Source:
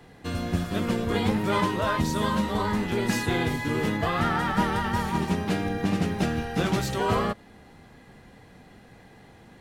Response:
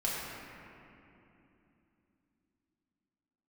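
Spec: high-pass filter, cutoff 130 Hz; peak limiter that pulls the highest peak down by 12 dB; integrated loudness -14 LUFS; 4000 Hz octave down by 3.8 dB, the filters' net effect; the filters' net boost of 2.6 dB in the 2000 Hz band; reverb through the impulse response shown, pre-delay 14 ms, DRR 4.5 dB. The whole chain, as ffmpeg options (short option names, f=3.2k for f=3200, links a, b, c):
-filter_complex "[0:a]highpass=130,equalizer=f=2k:t=o:g=4.5,equalizer=f=4k:t=o:g=-7,alimiter=limit=-23dB:level=0:latency=1,asplit=2[a][b];[1:a]atrim=start_sample=2205,adelay=14[c];[b][c]afir=irnorm=-1:irlink=0,volume=-11.5dB[d];[a][d]amix=inputs=2:normalize=0,volume=16.5dB"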